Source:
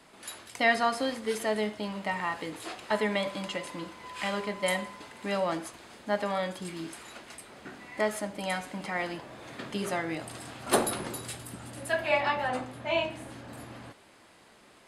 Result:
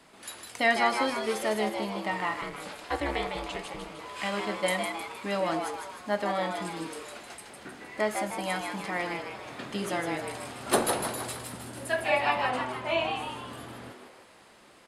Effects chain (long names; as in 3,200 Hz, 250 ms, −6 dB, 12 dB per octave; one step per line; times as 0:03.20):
echo with shifted repeats 155 ms, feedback 50%, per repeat +130 Hz, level −5.5 dB
0:02.41–0:03.99: ring modulation 140 Hz